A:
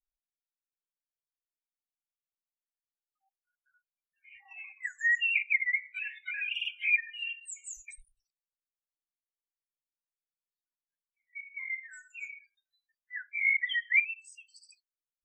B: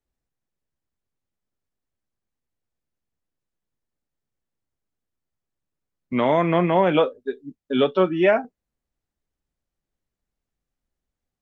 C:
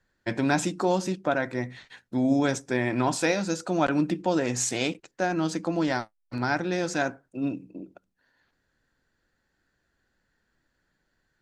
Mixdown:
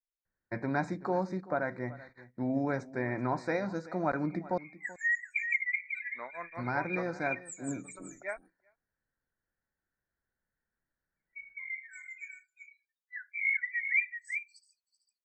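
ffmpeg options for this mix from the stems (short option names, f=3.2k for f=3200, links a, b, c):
-filter_complex "[0:a]volume=-3dB,asplit=2[a][b];[b]volume=-7.5dB[c];[1:a]tremolo=f=5.3:d=0.98,bandpass=f=2.3k:t=q:w=0.7:csg=0,volume=-12dB,asplit=3[d][e][f];[e]volume=-23.5dB[g];[2:a]lowpass=2.3k,adelay=250,volume=-5.5dB,asplit=3[h][i][j];[h]atrim=end=4.58,asetpts=PTS-STARTPTS,afade=t=out:st=4.576:d=0.004:c=hsin[k];[i]atrim=start=4.58:end=6.33,asetpts=PTS-STARTPTS,volume=0[l];[j]atrim=start=6.33,asetpts=PTS-STARTPTS,afade=t=in:d=0.004:c=hsin[m];[k][l][m]concat=n=3:v=0:a=1,asplit=2[n][o];[o]volume=-18.5dB[p];[f]apad=whole_len=672356[q];[a][q]sidechaincompress=threshold=-55dB:ratio=8:attack=16:release=112[r];[c][g][p]amix=inputs=3:normalize=0,aecho=0:1:382:1[s];[r][d][n][s]amix=inputs=4:normalize=0,agate=range=-9dB:threshold=-54dB:ratio=16:detection=peak,asuperstop=centerf=3000:order=20:qfactor=2.3,equalizer=f=300:t=o:w=0.73:g=-4"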